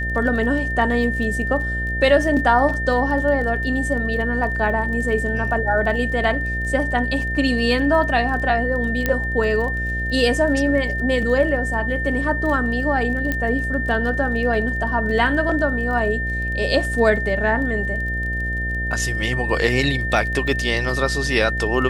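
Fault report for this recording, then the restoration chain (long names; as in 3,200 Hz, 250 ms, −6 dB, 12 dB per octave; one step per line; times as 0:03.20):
mains buzz 60 Hz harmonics 12 −26 dBFS
surface crackle 25 per second −29 dBFS
whistle 1,800 Hz −24 dBFS
0:09.06: click −6 dBFS
0:13.32: click −9 dBFS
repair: click removal
hum removal 60 Hz, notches 12
notch filter 1,800 Hz, Q 30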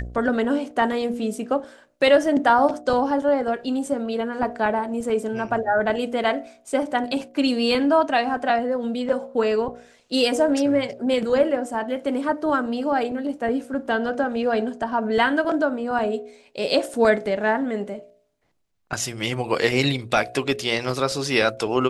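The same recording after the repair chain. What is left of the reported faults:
none of them is left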